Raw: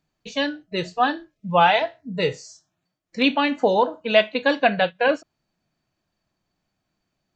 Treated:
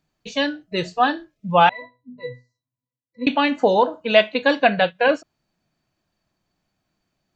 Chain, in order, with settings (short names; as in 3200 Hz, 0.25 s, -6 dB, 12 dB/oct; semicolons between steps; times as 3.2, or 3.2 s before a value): 1.69–3.27 octave resonator B, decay 0.26 s; gain +2 dB